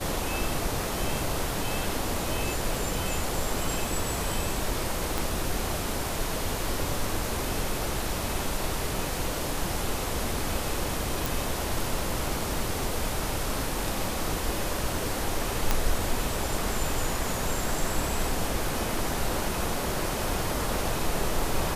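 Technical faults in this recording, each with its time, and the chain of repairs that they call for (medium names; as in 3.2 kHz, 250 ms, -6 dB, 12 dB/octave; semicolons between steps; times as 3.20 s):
5.18 s: pop
11.26 s: pop
15.71 s: pop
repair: de-click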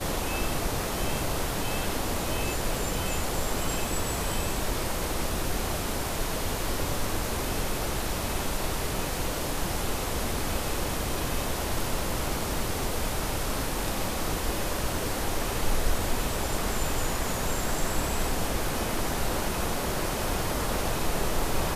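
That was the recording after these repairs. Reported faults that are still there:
5.18 s: pop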